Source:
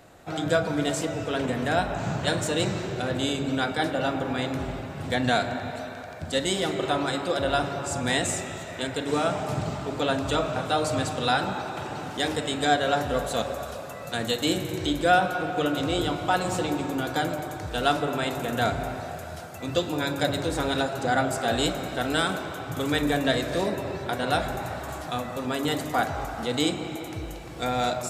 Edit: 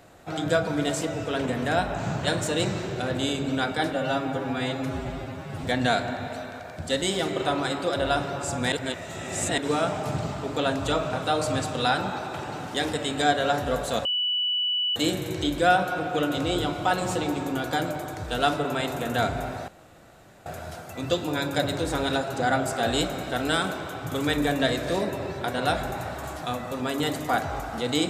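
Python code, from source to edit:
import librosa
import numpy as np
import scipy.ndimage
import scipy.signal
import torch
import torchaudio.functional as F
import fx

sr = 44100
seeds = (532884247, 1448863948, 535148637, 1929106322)

y = fx.edit(x, sr, fx.stretch_span(start_s=3.93, length_s=1.14, factor=1.5),
    fx.reverse_span(start_s=8.15, length_s=0.86),
    fx.bleep(start_s=13.48, length_s=0.91, hz=2960.0, db=-22.5),
    fx.insert_room_tone(at_s=19.11, length_s=0.78), tone=tone)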